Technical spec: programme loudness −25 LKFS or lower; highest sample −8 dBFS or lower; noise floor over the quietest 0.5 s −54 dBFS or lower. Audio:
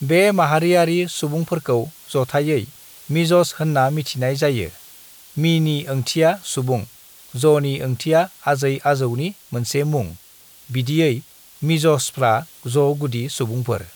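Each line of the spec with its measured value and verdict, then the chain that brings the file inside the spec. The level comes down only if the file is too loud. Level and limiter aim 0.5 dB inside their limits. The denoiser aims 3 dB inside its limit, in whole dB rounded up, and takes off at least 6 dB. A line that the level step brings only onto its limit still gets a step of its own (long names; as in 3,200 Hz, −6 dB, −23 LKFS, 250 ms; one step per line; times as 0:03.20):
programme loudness −19.5 LKFS: out of spec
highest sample −5.0 dBFS: out of spec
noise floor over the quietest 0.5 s −47 dBFS: out of spec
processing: broadband denoise 6 dB, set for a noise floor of −47 dBFS
level −6 dB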